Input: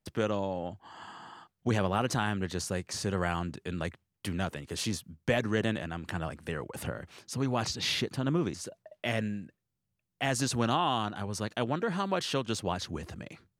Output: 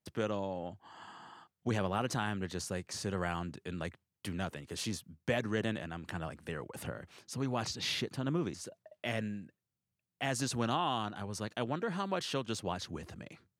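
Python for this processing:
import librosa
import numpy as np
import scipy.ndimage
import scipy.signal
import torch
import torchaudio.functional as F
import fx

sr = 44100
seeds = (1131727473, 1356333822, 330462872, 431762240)

y = scipy.signal.sosfilt(scipy.signal.butter(2, 73.0, 'highpass', fs=sr, output='sos'), x)
y = y * 10.0 ** (-4.5 / 20.0)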